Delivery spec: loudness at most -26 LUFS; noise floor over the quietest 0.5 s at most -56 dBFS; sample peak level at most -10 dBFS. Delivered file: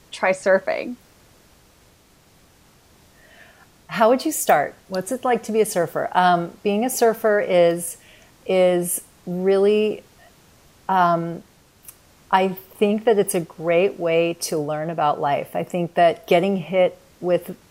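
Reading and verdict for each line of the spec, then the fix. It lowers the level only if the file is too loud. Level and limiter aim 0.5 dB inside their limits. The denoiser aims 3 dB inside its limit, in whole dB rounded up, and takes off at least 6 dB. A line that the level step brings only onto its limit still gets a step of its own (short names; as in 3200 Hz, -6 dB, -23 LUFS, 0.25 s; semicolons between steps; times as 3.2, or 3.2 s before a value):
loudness -20.5 LUFS: fail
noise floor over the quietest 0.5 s -54 dBFS: fail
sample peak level -3.0 dBFS: fail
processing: gain -6 dB; limiter -10.5 dBFS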